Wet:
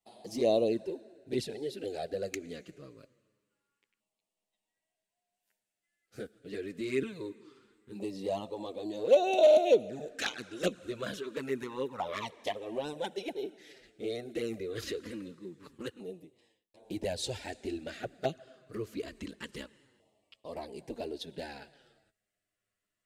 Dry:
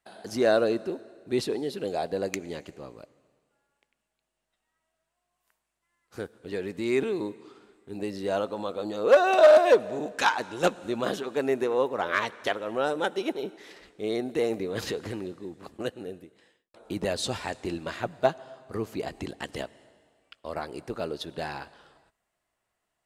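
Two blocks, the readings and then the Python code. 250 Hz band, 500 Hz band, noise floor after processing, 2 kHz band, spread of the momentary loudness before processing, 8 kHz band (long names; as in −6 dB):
−5.5 dB, −5.5 dB, below −85 dBFS, −11.0 dB, 17 LU, −5.0 dB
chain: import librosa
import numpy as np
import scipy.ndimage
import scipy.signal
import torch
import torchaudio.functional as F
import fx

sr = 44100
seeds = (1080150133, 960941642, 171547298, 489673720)

y = fx.env_flanger(x, sr, rest_ms=9.9, full_db=-19.0)
y = fx.filter_lfo_notch(y, sr, shape='saw_down', hz=0.25, low_hz=650.0, high_hz=1600.0, q=1.0)
y = F.gain(torch.from_numpy(y), -2.0).numpy()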